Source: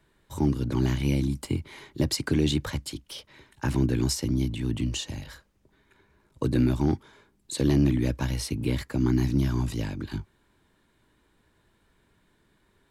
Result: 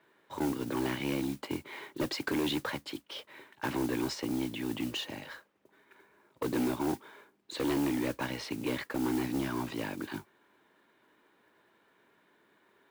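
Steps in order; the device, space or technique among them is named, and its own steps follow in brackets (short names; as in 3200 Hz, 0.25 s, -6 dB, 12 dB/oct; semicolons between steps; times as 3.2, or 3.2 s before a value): carbon microphone (BPF 340–2800 Hz; soft clip -29 dBFS, distortion -10 dB; modulation noise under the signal 17 dB); gain +3.5 dB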